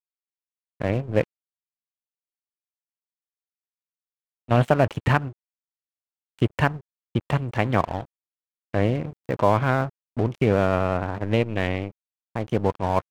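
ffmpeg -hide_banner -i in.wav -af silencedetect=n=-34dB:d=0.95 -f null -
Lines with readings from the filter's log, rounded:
silence_start: 1.24
silence_end: 4.49 | silence_duration: 3.26
silence_start: 5.31
silence_end: 6.39 | silence_duration: 1.08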